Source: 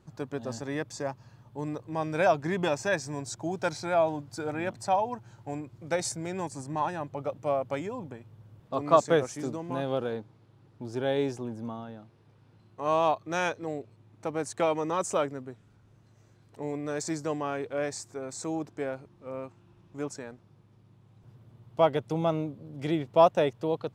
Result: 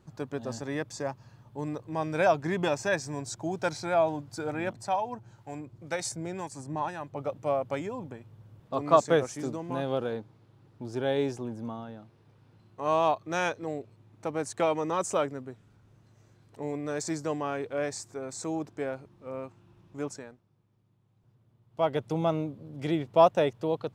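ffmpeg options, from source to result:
-filter_complex "[0:a]asettb=1/sr,asplit=3[a][b][c];[a]atrim=end=4.734[d];[b]atrim=start=4.73:end=7.16,asetpts=PTS-STARTPTS,afade=t=in:d=0.004:c=qsin,afade=t=out:st=2.426:d=0.004:c=qsin,acrossover=split=830[e][f];[e]aeval=exprs='val(0)*(1-0.5/2+0.5/2*cos(2*PI*2*n/s))':c=same[g];[f]aeval=exprs='val(0)*(1-0.5/2-0.5/2*cos(2*PI*2*n/s))':c=same[h];[g][h]amix=inputs=2:normalize=0[i];[c]atrim=start=7.156[j];[d][i]acrossfade=d=0.004:c1=hsin:c2=qsin[k];[k][j]acrossfade=d=0.004:c1=qsin:c2=hsin,asplit=3[l][m][n];[l]atrim=end=20.41,asetpts=PTS-STARTPTS,afade=t=out:st=20.1:d=0.31:silence=0.281838[o];[m]atrim=start=20.41:end=21.69,asetpts=PTS-STARTPTS,volume=-11dB[p];[n]atrim=start=21.69,asetpts=PTS-STARTPTS,afade=t=in:d=0.31:silence=0.281838[q];[o][p][q]concat=n=3:v=0:a=1"

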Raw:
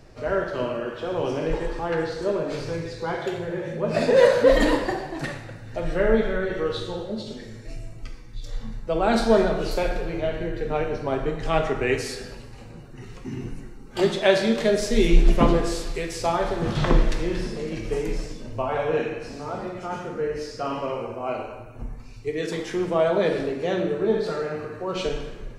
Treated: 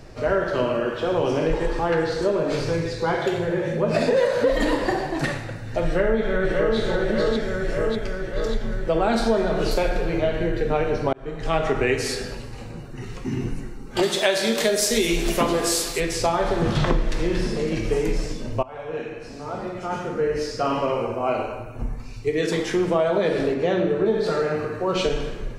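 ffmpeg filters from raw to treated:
-filter_complex "[0:a]asplit=2[a][b];[b]afade=t=in:st=5.85:d=0.01,afade=t=out:st=6.77:d=0.01,aecho=0:1:590|1180|1770|2360|2950|3540|4130|4720|5310|5900:0.668344|0.434424|0.282375|0.183544|0.119304|0.0775473|0.0504058|0.0327637|0.0212964|0.0138427[c];[a][c]amix=inputs=2:normalize=0,asplit=3[d][e][f];[d]afade=t=out:st=14.02:d=0.02[g];[e]aemphasis=mode=production:type=bsi,afade=t=in:st=14.02:d=0.02,afade=t=out:st=15.99:d=0.02[h];[f]afade=t=in:st=15.99:d=0.02[i];[g][h][i]amix=inputs=3:normalize=0,asettb=1/sr,asplit=3[j][k][l];[j]atrim=end=23.544[m];[k]atrim=start=23.54:end=24.06,asetpts=PTS-STARTPTS,afade=t=in:d=0.004:c=qsin,afade=t=out:st=0.516:d=0.004:c=qsin,lowpass=f=3.8k:p=1[n];[l]atrim=start=24.056[o];[m][n]acrossfade=d=0.004:c1=hsin:c2=qsin[p];[p][o]acrossfade=d=0.004:c1=qsin:c2=hsin,asplit=3[q][r][s];[q]atrim=end=11.13,asetpts=PTS-STARTPTS,afade=t=out:st=11.126:d=0.004:c=hsin[t];[r]atrim=start=11.13:end=18.63,asetpts=PTS-STARTPTS,afade=t=in:d=0.59,afade=t=out:st=7.496:d=0.004:c=hsin:silence=0.0841395[u];[s]atrim=start=18.63,asetpts=PTS-STARTPTS,afade=t=in:d=1.87:silence=0.0841395[v];[t][u][v]concat=n=3:v=0:a=1,acompressor=threshold=-23dB:ratio=6,volume=6dB"

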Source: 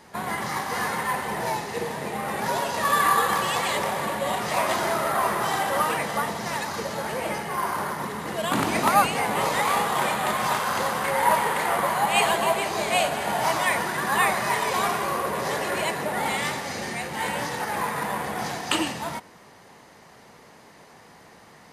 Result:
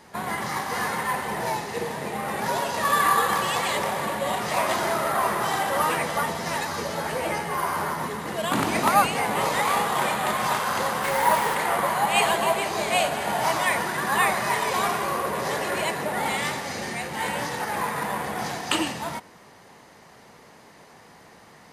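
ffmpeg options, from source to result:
-filter_complex "[0:a]asettb=1/sr,asplit=3[a][b][c];[a]atrim=end=5.804[d];[b]atrim=start=5.8:end=8.16,asetpts=PTS-STARTPTS,afade=t=in:d=0.004:c=qsin,afade=t=out:st=2.356:d=0.004:c=qsin,asplit=2[e][f];[f]adelay=12,volume=-5dB[g];[e][g]amix=inputs=2:normalize=0,atrim=end_sample=104076[h];[c]atrim=start=8.156[i];[d][h]acrossfade=d=0.004:c1=hsin:c2=qsin[j];[j][i]acrossfade=d=0.004:c1=qsin:c2=hsin,asettb=1/sr,asplit=3[k][l][m];[k]atrim=end=11.034[n];[l]atrim=start=11.03:end=11.55,asetpts=PTS-STARTPTS,afade=t=in:d=0.004:c=qsin,afade=t=out:st=0.516:d=0.004:c=qsin,acrusher=bits=4:mix=0:aa=0.5[o];[m]atrim=start=11.546[p];[n][o]acrossfade=d=0.004:c1=hsin:c2=qsin[q];[q][p]acrossfade=d=0.004:c1=qsin:c2=hsin"

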